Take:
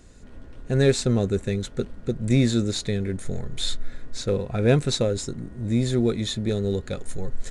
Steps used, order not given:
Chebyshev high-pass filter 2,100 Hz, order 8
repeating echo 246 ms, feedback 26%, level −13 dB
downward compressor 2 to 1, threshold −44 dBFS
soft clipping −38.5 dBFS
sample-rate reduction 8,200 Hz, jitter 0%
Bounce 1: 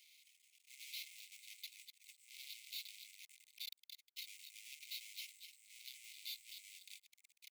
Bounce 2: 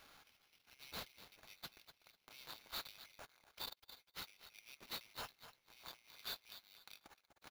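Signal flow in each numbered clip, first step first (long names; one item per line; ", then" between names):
sample-rate reduction, then repeating echo, then soft clipping, then downward compressor, then Chebyshev high-pass filter
downward compressor, then repeating echo, then soft clipping, then Chebyshev high-pass filter, then sample-rate reduction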